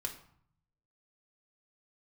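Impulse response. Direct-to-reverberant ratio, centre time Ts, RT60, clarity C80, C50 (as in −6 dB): 2.5 dB, 14 ms, 0.60 s, 14.0 dB, 10.0 dB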